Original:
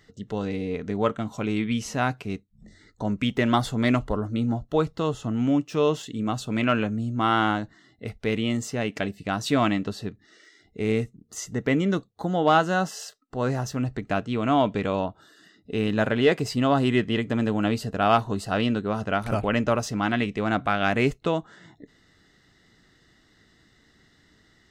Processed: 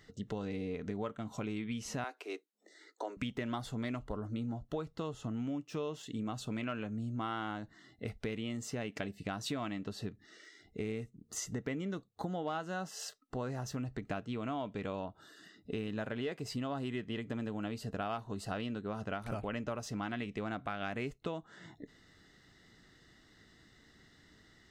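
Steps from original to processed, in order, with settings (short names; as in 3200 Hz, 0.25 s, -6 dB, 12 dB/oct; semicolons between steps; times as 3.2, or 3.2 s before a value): 2.04–3.17 steep high-pass 320 Hz 48 dB/oct; compressor 6:1, threshold -33 dBFS, peak gain reduction 17.5 dB; gain -2.5 dB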